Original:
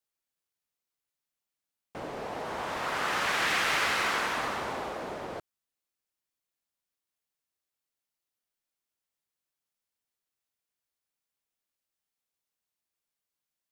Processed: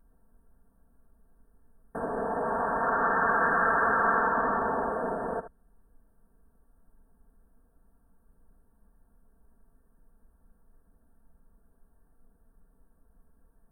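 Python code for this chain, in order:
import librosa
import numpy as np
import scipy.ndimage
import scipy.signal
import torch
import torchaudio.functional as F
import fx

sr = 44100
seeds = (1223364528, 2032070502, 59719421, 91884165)

y = fx.env_lowpass_down(x, sr, base_hz=2300.0, full_db=-27.5)
y = fx.dmg_noise_colour(y, sr, seeds[0], colour='brown', level_db=-67.0)
y = fx.brickwall_bandstop(y, sr, low_hz=1800.0, high_hz=8300.0)
y = y + 0.8 * np.pad(y, (int(4.4 * sr / 1000.0), 0))[:len(y)]
y = y + 10.0 ** (-12.5 / 20.0) * np.pad(y, (int(75 * sr / 1000.0), 0))[:len(y)]
y = F.gain(torch.from_numpy(y), 4.0).numpy()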